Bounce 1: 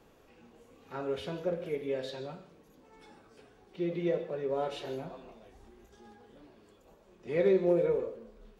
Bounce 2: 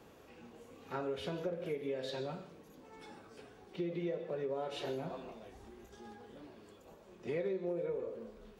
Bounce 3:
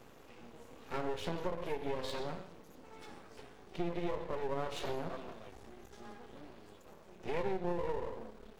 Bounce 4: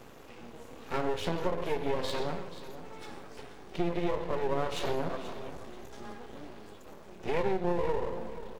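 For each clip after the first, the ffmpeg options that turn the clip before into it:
-af "highpass=54,acompressor=threshold=0.0126:ratio=6,volume=1.41"
-af "aeval=exprs='max(val(0),0)':c=same,volume=1.78"
-af "aecho=1:1:483|966|1449:0.211|0.0655|0.0203,volume=2"

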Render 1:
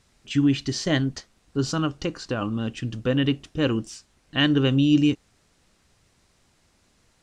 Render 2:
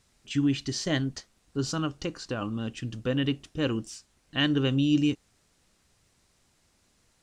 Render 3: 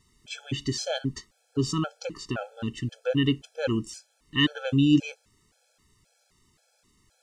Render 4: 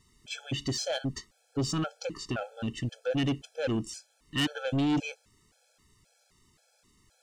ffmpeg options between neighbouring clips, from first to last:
-af "highshelf=f=6300:g=6,volume=0.562"
-af "afftfilt=real='re*gt(sin(2*PI*1.9*pts/sr)*(1-2*mod(floor(b*sr/1024/440),2)),0)':imag='im*gt(sin(2*PI*1.9*pts/sr)*(1-2*mod(floor(b*sr/1024/440),2)),0)':win_size=1024:overlap=0.75,volume=1.58"
-af "asoftclip=type=tanh:threshold=0.0668"

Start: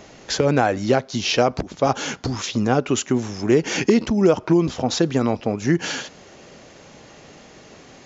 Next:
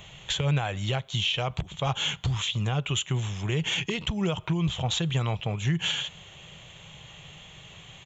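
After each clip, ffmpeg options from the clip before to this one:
-af "firequalizer=gain_entry='entry(160,0);entry(240,-23);entry(350,-17);entry(1000,-7);entry(1500,-10);entry(3300,7);entry(4900,-21);entry(8000,4)':delay=0.05:min_phase=1,alimiter=limit=0.0944:level=0:latency=1:release=198,volume=1.41"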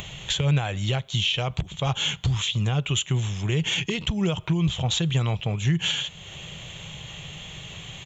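-af "acompressor=mode=upward:threshold=0.02:ratio=2.5,equalizer=f=1000:t=o:w=2.3:g=-4.5,volume=1.58"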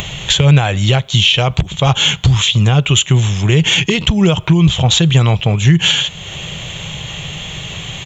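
-af "acontrast=37,volume=2.37"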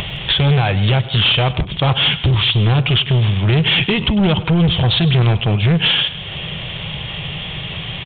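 -af "aresample=8000,asoftclip=type=hard:threshold=0.282,aresample=44100,aecho=1:1:100|164:0.141|0.126"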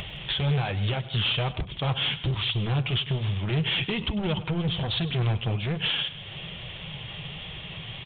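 -af "flanger=delay=1.4:depth=8.3:regen=-41:speed=1.2:shape=triangular,volume=0.398"

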